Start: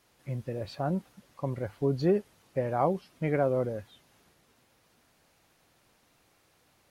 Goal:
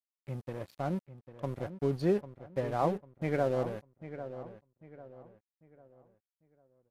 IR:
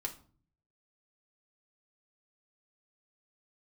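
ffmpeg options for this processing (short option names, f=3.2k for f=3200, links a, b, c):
-filter_complex "[0:a]aeval=exprs='sgn(val(0))*max(abs(val(0))-0.00794,0)':c=same,asplit=2[a][b];[b]adelay=797,lowpass=f=2.5k:p=1,volume=-12dB,asplit=2[c][d];[d]adelay=797,lowpass=f=2.5k:p=1,volume=0.37,asplit=2[e][f];[f]adelay=797,lowpass=f=2.5k:p=1,volume=0.37,asplit=2[g][h];[h]adelay=797,lowpass=f=2.5k:p=1,volume=0.37[i];[c][e][g][i]amix=inputs=4:normalize=0[j];[a][j]amix=inputs=2:normalize=0,aresample=32000,aresample=44100,volume=-2dB"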